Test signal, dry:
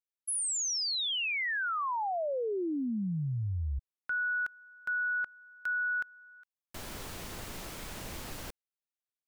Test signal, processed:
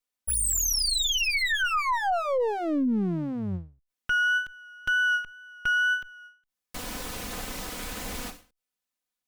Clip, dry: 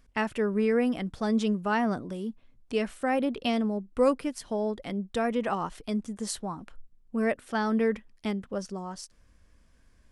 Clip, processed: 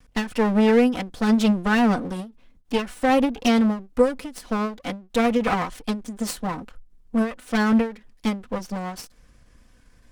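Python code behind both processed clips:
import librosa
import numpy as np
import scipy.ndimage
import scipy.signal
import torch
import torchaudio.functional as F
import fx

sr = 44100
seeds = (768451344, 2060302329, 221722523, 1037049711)

y = fx.lower_of_two(x, sr, delay_ms=4.0)
y = fx.wow_flutter(y, sr, seeds[0], rate_hz=2.1, depth_cents=17.0)
y = fx.end_taper(y, sr, db_per_s=160.0)
y = y * 10.0 ** (8.5 / 20.0)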